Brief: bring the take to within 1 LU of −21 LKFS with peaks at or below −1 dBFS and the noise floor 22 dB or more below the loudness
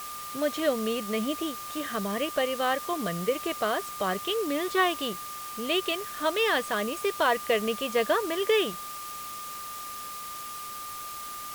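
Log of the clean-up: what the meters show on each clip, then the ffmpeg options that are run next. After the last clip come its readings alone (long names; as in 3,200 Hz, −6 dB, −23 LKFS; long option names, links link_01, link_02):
interfering tone 1,200 Hz; level of the tone −38 dBFS; background noise floor −39 dBFS; target noise floor −51 dBFS; integrated loudness −29.0 LKFS; sample peak −11.0 dBFS; target loudness −21.0 LKFS
→ -af "bandreject=frequency=1200:width=30"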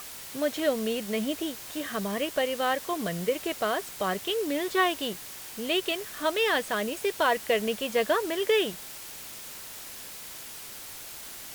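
interfering tone none found; background noise floor −42 dBFS; target noise floor −52 dBFS
→ -af "afftdn=noise_reduction=10:noise_floor=-42"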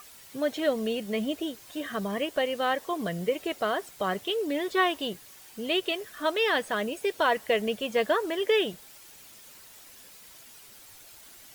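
background noise floor −51 dBFS; integrated loudness −28.5 LKFS; sample peak −12.0 dBFS; target loudness −21.0 LKFS
→ -af "volume=7.5dB"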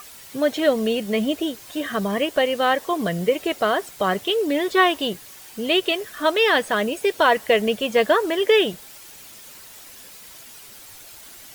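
integrated loudness −21.0 LKFS; sample peak −4.5 dBFS; background noise floor −43 dBFS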